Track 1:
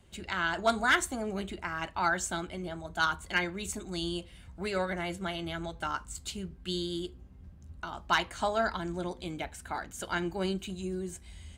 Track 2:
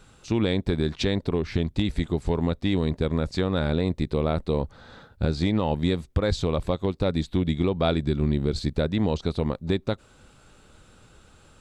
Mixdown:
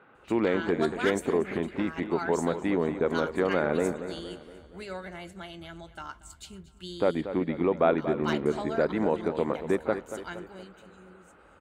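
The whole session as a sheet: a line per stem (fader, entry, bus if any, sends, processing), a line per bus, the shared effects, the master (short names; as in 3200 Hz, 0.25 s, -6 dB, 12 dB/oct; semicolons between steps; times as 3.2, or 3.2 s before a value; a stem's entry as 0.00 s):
10.28 s -7 dB -> 10.74 s -18.5 dB, 0.15 s, no send, echo send -18.5 dB, dry
+2.5 dB, 0.00 s, muted 3.99–6.96, no send, echo send -11 dB, HPF 330 Hz 12 dB/oct; LPF 2100 Hz 24 dB/oct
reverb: off
echo: feedback echo 0.234 s, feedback 51%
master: dry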